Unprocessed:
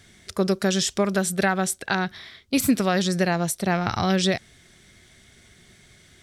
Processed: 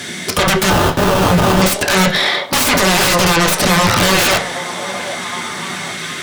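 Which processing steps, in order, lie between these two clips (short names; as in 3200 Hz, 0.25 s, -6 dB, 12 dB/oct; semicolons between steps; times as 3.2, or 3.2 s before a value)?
tracing distortion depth 0.16 ms; HPF 170 Hz 24 dB/oct; limiter -16 dBFS, peak gain reduction 9 dB; 0.7–1.62 sample-rate reducer 2100 Hz, jitter 20%; sine folder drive 18 dB, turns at -16 dBFS; delay with a stepping band-pass 0.768 s, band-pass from 600 Hz, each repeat 0.7 oct, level -7 dB; on a send at -2.5 dB: reverb, pre-delay 3 ms; on the sum: gain +5 dB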